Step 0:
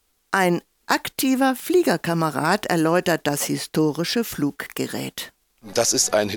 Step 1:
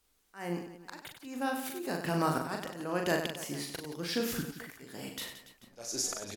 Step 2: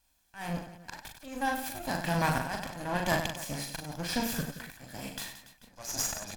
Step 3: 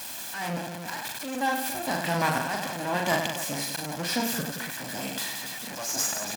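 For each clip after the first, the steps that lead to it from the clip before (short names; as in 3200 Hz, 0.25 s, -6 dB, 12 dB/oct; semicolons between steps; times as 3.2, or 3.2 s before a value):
auto swell 0.624 s; on a send: reverse bouncing-ball echo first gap 40 ms, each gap 1.4×, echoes 5; on the sum: gain -7 dB
minimum comb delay 1.2 ms; gain +3 dB
zero-crossing step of -32.5 dBFS; HPF 190 Hz 12 dB/oct; gain +2 dB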